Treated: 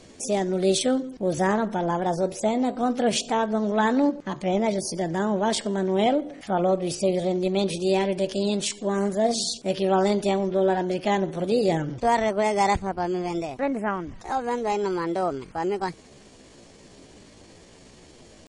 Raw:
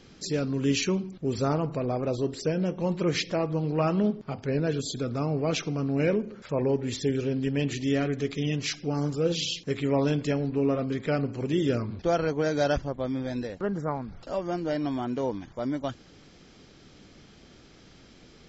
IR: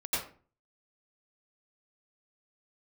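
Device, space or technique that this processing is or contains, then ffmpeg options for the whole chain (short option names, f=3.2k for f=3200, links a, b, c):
chipmunk voice: -af "asetrate=60591,aresample=44100,atempo=0.727827,volume=3.5dB"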